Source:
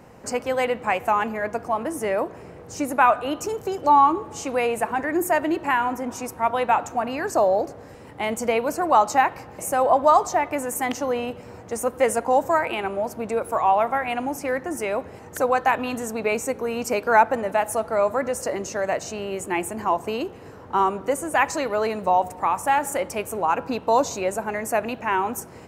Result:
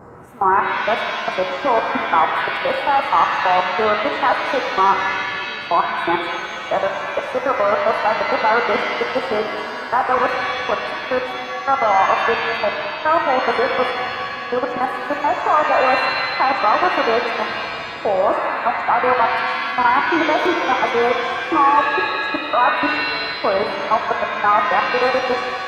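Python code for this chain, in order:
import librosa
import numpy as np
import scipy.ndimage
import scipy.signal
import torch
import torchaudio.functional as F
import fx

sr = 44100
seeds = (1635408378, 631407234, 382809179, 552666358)

y = x[::-1].copy()
y = fx.level_steps(y, sr, step_db=24)
y = fx.high_shelf_res(y, sr, hz=1900.0, db=-13.0, q=3.0)
y = fx.rev_shimmer(y, sr, seeds[0], rt60_s=2.1, semitones=7, shimmer_db=-2, drr_db=4.0)
y = y * 10.0 ** (5.0 / 20.0)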